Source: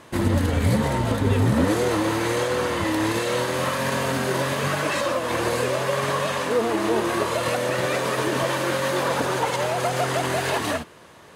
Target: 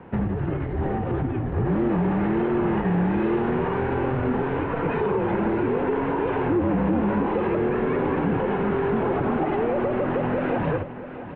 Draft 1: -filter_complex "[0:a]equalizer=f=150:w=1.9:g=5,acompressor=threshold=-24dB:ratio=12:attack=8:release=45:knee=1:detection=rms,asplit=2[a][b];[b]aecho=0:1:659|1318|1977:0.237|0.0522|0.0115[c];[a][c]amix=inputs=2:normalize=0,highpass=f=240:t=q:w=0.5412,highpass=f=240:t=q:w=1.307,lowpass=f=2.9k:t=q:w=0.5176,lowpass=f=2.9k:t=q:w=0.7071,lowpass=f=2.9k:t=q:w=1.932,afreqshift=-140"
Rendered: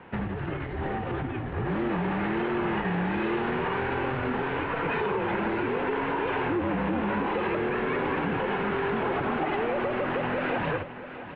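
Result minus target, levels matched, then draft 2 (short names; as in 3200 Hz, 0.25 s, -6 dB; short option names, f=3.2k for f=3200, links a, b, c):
1000 Hz band +3.0 dB
-filter_complex "[0:a]equalizer=f=150:w=1.9:g=5,acompressor=threshold=-24dB:ratio=12:attack=8:release=45:knee=1:detection=rms,tiltshelf=f=1.3k:g=8,asplit=2[a][b];[b]aecho=0:1:659|1318|1977:0.237|0.0522|0.0115[c];[a][c]amix=inputs=2:normalize=0,highpass=f=240:t=q:w=0.5412,highpass=f=240:t=q:w=1.307,lowpass=f=2.9k:t=q:w=0.5176,lowpass=f=2.9k:t=q:w=0.7071,lowpass=f=2.9k:t=q:w=1.932,afreqshift=-140"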